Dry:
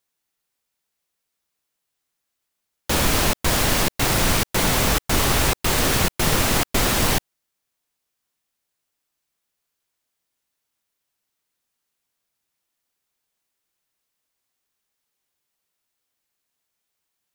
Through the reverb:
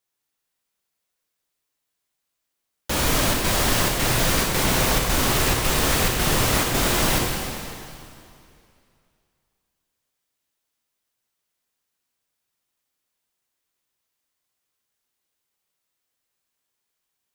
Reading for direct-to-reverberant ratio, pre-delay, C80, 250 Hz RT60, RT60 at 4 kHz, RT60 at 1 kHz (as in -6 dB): -1.0 dB, 5 ms, 2.0 dB, 2.5 s, 2.3 s, 2.5 s